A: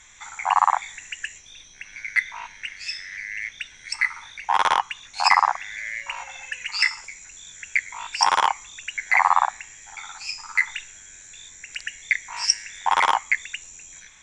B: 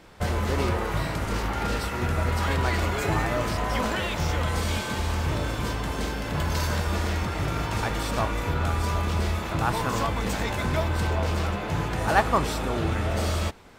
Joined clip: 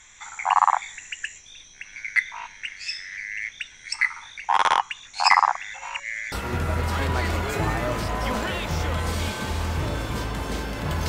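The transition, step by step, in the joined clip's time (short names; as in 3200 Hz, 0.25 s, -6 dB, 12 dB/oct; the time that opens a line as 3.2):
A
5.74–6.32 reverse
6.32 switch to B from 1.81 s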